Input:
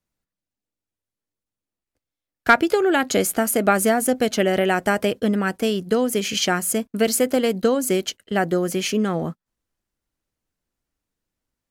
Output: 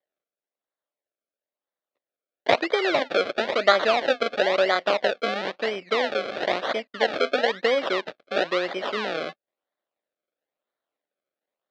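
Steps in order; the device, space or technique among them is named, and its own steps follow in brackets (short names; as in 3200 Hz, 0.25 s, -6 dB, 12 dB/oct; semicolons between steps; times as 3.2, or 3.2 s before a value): circuit-bent sampling toy (decimation with a swept rate 32×, swing 100% 1 Hz; speaker cabinet 520–4300 Hz, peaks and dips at 580 Hz +7 dB, 930 Hz -4 dB, 1900 Hz +3 dB, 3800 Hz +4 dB); 3.01–4.76 bell 14000 Hz +7.5 dB 0.24 oct; gain -1 dB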